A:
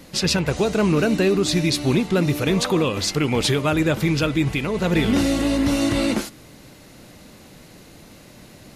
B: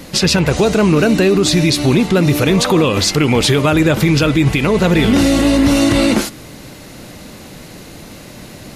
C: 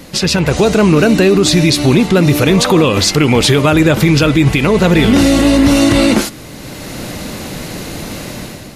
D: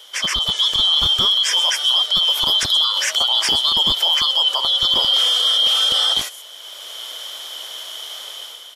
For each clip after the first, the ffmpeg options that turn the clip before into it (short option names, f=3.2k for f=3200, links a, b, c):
-af "alimiter=level_in=14dB:limit=-1dB:release=50:level=0:latency=1,volume=-3.5dB"
-af "dynaudnorm=f=130:g=7:m=11dB,volume=-1dB"
-filter_complex "[0:a]afftfilt=real='real(if(lt(b,272),68*(eq(floor(b/68),0)*1+eq(floor(b/68),1)*3+eq(floor(b/68),2)*0+eq(floor(b/68),3)*2)+mod(b,68),b),0)':imag='imag(if(lt(b,272),68*(eq(floor(b/68),0)*1+eq(floor(b/68),1)*3+eq(floor(b/68),2)*0+eq(floor(b/68),3)*2)+mod(b,68),b),0)':win_size=2048:overlap=0.75,acrossover=split=390|6700[a][b][c];[a]acrusher=bits=3:mix=0:aa=0.000001[d];[c]aecho=1:1:129:0.473[e];[d][b][e]amix=inputs=3:normalize=0,volume=-7.5dB"